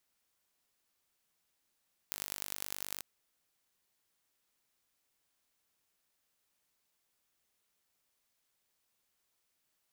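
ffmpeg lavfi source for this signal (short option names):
-f lavfi -i "aevalsrc='0.376*eq(mod(n,889),0)*(0.5+0.5*eq(mod(n,4445),0))':d=0.89:s=44100"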